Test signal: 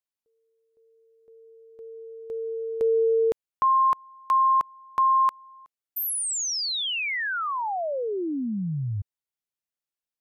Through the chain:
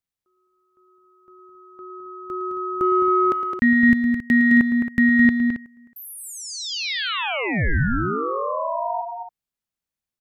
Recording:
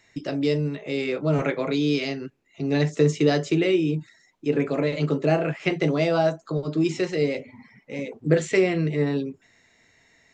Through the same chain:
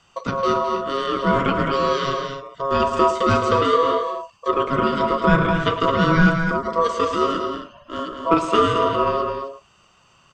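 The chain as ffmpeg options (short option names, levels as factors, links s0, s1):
-filter_complex "[0:a]acrossover=split=4100[s0][s1];[s1]acompressor=threshold=0.01:ratio=4:attack=1:release=60[s2];[s0][s2]amix=inputs=2:normalize=0,aeval=exprs='val(0)*sin(2*PI*820*n/s)':c=same,bass=f=250:g=9,treble=f=4000:g=-1,asplit=2[s3][s4];[s4]asoftclip=type=tanh:threshold=0.168,volume=0.316[s5];[s3][s5]amix=inputs=2:normalize=0,aecho=1:1:110.8|212.8|271.1:0.251|0.447|0.282,volume=1.33"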